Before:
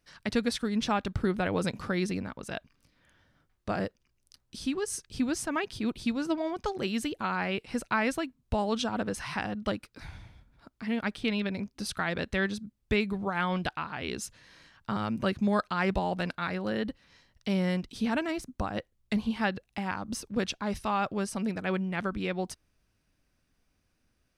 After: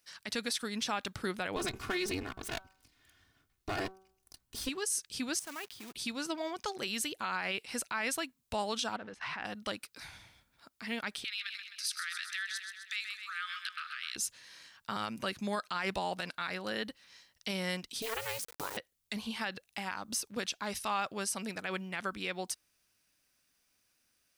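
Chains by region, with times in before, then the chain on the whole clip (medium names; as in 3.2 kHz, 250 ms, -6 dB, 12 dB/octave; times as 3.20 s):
1.56–4.69 s: comb filter that takes the minimum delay 2.8 ms + tone controls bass +15 dB, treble -3 dB + de-hum 190 Hz, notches 8
5.39–5.95 s: companded quantiser 4-bit + treble shelf 3.8 kHz -8 dB + level held to a coarse grid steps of 13 dB
8.96–9.45 s: companding laws mixed up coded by mu + low-pass 2.4 kHz + level held to a coarse grid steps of 19 dB
11.24–14.16 s: rippled Chebyshev high-pass 1.2 kHz, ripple 3 dB + feedback delay 129 ms, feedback 59%, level -10 dB + compression 2.5:1, threshold -36 dBFS
18.02–18.77 s: hum notches 50/100/150/200/250 Hz + ring modulator 220 Hz + word length cut 8-bit, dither none
whole clip: tilt EQ +3.5 dB/octave; peak limiter -21 dBFS; trim -2.5 dB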